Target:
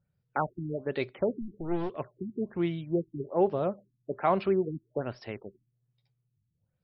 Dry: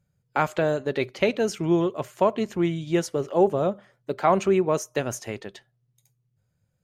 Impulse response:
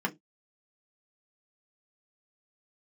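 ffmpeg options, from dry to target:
-filter_complex "[0:a]asplit=3[a][b][c];[a]afade=t=out:st=1.41:d=0.02[d];[b]aeval=exprs='clip(val(0),-1,0.0237)':c=same,afade=t=in:st=1.41:d=0.02,afade=t=out:st=1.95:d=0.02[e];[c]afade=t=in:st=1.95:d=0.02[f];[d][e][f]amix=inputs=3:normalize=0,afftfilt=real='re*lt(b*sr/1024,330*pow(5800/330,0.5+0.5*sin(2*PI*1.2*pts/sr)))':imag='im*lt(b*sr/1024,330*pow(5800/330,0.5+0.5*sin(2*PI*1.2*pts/sr)))':win_size=1024:overlap=0.75,volume=-5.5dB"

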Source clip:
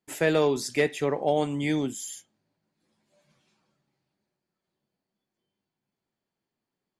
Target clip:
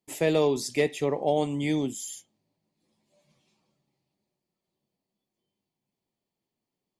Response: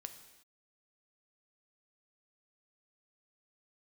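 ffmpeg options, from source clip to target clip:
-af "equalizer=f=1.5k:w=3.1:g=-13.5"

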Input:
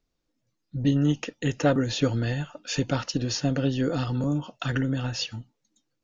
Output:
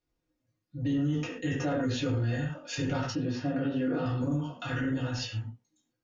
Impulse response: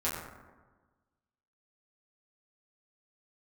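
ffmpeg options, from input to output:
-filter_complex "[1:a]atrim=start_sample=2205,afade=t=out:st=0.24:d=0.01,atrim=end_sample=11025,asetrate=57330,aresample=44100[a];[0:a][a]afir=irnorm=-1:irlink=0,alimiter=limit=-15dB:level=0:latency=1:release=24,asettb=1/sr,asplit=3[b][c][d];[b]atrim=end=3.154[e];[c]atrim=start=3.15:end=4.06,asetpts=PTS-STARTPTS,afade=t=in:d=0.004:c=qsin,afade=t=out:st=0.906:d=0.004:c=qsin,highpass=110,lowpass=2.8k[f];[d]atrim=start=4.056[g];[e][f]acrossfade=d=0.004:c1=hsin:c2=qsin[h];[h][g]acrossfade=d=0.004:c1=qsin:c2=hsin,volume=-7dB"

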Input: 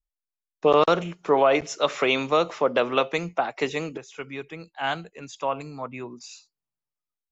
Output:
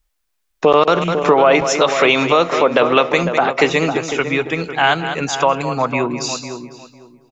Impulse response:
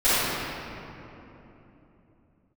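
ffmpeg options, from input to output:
-filter_complex "[0:a]equalizer=f=1.8k:t=o:w=1.9:g=2.5,asplit=2[a][b];[b]aecho=0:1:202:0.2[c];[a][c]amix=inputs=2:normalize=0,acompressor=threshold=-35dB:ratio=2,asplit=2[d][e];[e]adelay=502,lowpass=f=1.3k:p=1,volume=-9dB,asplit=2[f][g];[g]adelay=502,lowpass=f=1.3k:p=1,volume=0.21,asplit=2[h][i];[i]adelay=502,lowpass=f=1.3k:p=1,volume=0.21[j];[f][h][j]amix=inputs=3:normalize=0[k];[d][k]amix=inputs=2:normalize=0,alimiter=level_in=19.5dB:limit=-1dB:release=50:level=0:latency=1,volume=-1dB"

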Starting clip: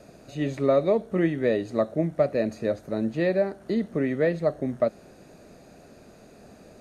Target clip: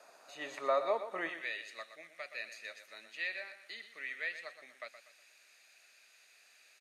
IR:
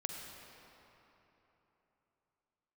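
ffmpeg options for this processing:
-af "asetnsamples=n=441:p=0,asendcmd='1.29 highpass f 2300',highpass=f=970:t=q:w=1.9,aecho=1:1:121|242|363|484:0.282|0.104|0.0386|0.0143,volume=-4.5dB"

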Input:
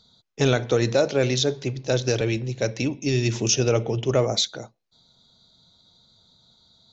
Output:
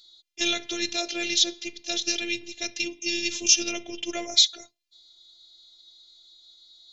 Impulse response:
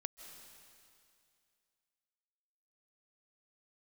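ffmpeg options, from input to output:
-af "highshelf=f=1.8k:t=q:w=1.5:g=13.5,afftfilt=real='hypot(re,im)*cos(PI*b)':imag='0':win_size=512:overlap=0.75,volume=-7dB"

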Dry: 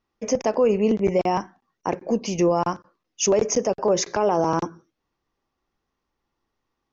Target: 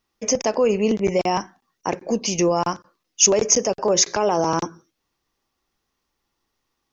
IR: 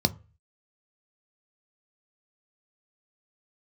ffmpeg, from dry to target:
-af "highshelf=f=2.8k:g=11.5"

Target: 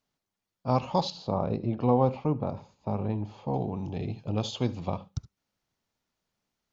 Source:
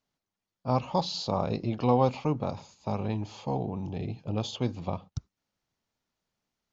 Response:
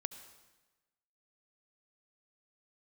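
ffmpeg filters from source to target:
-filter_complex "[0:a]asettb=1/sr,asplit=3[a][b][c];[a]atrim=end=1.104[d];[b]atrim=start=1.1:end=3.54,asetpts=PTS-STARTPTS,afade=t=in:d=0.004:c=qsin,afade=t=out:st=2.436:d=0.004:c=qsin,lowpass=f=1k:p=1[e];[c]atrim=start=3.536[f];[d][e]acrossfade=d=0.004:c1=hsin:c2=qsin[g];[g][f]acrossfade=d=0.004:c1=qsin:c2=hsin[h];[1:a]atrim=start_sample=2205,atrim=end_sample=3528[i];[h][i]afir=irnorm=-1:irlink=0,volume=3dB"

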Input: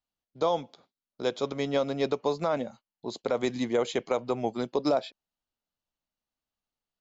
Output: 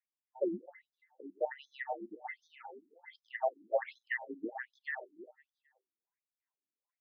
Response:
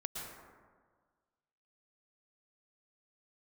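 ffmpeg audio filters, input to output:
-af "afftfilt=real='real(if(between(b,1,1008),(2*floor((b-1)/48)+1)*48-b,b),0)':imag='imag(if(between(b,1,1008),(2*floor((b-1)/48)+1)*48-b,b),0)*if(between(b,1,1008),-1,1)':win_size=2048:overlap=0.75,highshelf=f=2.7k:t=q:w=3:g=-11.5,aecho=1:1:261|522|783:0.1|0.041|0.0168,afftfilt=real='re*between(b*sr/1024,250*pow(4800/250,0.5+0.5*sin(2*PI*1.3*pts/sr))/1.41,250*pow(4800/250,0.5+0.5*sin(2*PI*1.3*pts/sr))*1.41)':imag='im*between(b*sr/1024,250*pow(4800/250,0.5+0.5*sin(2*PI*1.3*pts/sr))/1.41,250*pow(4800/250,0.5+0.5*sin(2*PI*1.3*pts/sr))*1.41)':win_size=1024:overlap=0.75,volume=-3dB"

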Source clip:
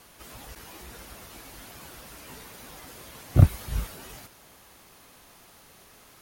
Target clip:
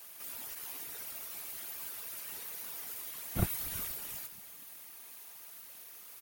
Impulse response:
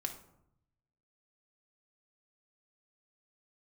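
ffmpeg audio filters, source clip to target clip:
-filter_complex "[0:a]aemphasis=mode=production:type=bsi,afftfilt=real='hypot(re,im)*cos(2*PI*random(0))':imag='hypot(re,im)*sin(2*PI*random(1))':win_size=512:overlap=0.75,equalizer=f=2.3k:t=o:w=1.3:g=3.5,asplit=2[a][b];[b]asplit=5[c][d][e][f][g];[c]adelay=238,afreqshift=-72,volume=-21.5dB[h];[d]adelay=476,afreqshift=-144,volume=-26.1dB[i];[e]adelay=714,afreqshift=-216,volume=-30.7dB[j];[f]adelay=952,afreqshift=-288,volume=-35.2dB[k];[g]adelay=1190,afreqshift=-360,volume=-39.8dB[l];[h][i][j][k][l]amix=inputs=5:normalize=0[m];[a][m]amix=inputs=2:normalize=0,volume=-2dB"

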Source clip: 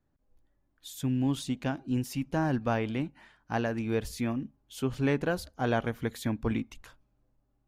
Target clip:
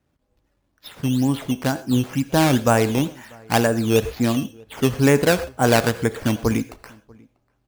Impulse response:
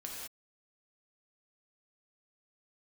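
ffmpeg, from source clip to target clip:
-filter_complex "[0:a]asettb=1/sr,asplit=3[a][b][c];[a]atrim=end=3.674[d];[b]atrim=start=3.67:end=4.24,asetpts=PTS-STARTPTS,afade=t=in:d=0.004:c=qsin,afade=t=out:st=0.566:d=0.004:c=qsin,equalizer=f=2.7k:t=o:w=1.2:g=-10[e];[c]atrim=start=4.236[f];[d][e]acrossfade=d=0.004:c1=hsin:c2=qsin[g];[g][f]acrossfade=d=0.004:c1=qsin:c2=hsin,acrossover=split=4000[h][i];[h]highpass=46[j];[i]acompressor=threshold=-57dB:ratio=6[k];[j][k]amix=inputs=2:normalize=0,acrusher=samples=10:mix=1:aa=0.000001:lfo=1:lforange=10:lforate=2.1,asplit=2[l][m];[m]firequalizer=gain_entry='entry(240,0);entry(450,15);entry(680,10)':delay=0.05:min_phase=1[n];[1:a]atrim=start_sample=2205,afade=t=out:st=0.18:d=0.01,atrim=end_sample=8379[o];[n][o]afir=irnorm=-1:irlink=0,volume=-17dB[p];[l][p]amix=inputs=2:normalize=0,dynaudnorm=f=320:g=11:m=4dB,asplit=2[q][r];[r]adelay=641.4,volume=-27dB,highshelf=f=4k:g=-14.4[s];[q][s]amix=inputs=2:normalize=0,volume=6.5dB"

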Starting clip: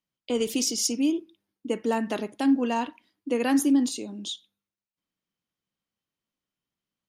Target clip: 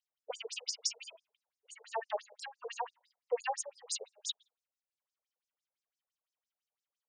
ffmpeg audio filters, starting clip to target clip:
-af "acompressor=threshold=-23dB:ratio=6,afftfilt=real='re*between(b*sr/1024,590*pow(7000/590,0.5+0.5*sin(2*PI*5.9*pts/sr))/1.41,590*pow(7000/590,0.5+0.5*sin(2*PI*5.9*pts/sr))*1.41)':imag='im*between(b*sr/1024,590*pow(7000/590,0.5+0.5*sin(2*PI*5.9*pts/sr))/1.41,590*pow(7000/590,0.5+0.5*sin(2*PI*5.9*pts/sr))*1.41)':win_size=1024:overlap=0.75,volume=1dB"

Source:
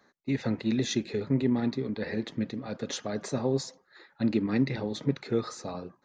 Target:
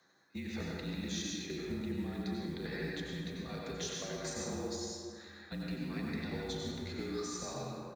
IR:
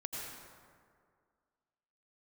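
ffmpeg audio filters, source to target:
-filter_complex "[0:a]highpass=150,highshelf=f=2.2k:g=10,acompressor=threshold=-31dB:ratio=10,atempo=0.76,aecho=1:1:38|74:0.141|0.141,afreqshift=-48,acrusher=bits=7:mode=log:mix=0:aa=0.000001[a];[1:a]atrim=start_sample=2205[b];[a][b]afir=irnorm=-1:irlink=0,volume=-4dB"

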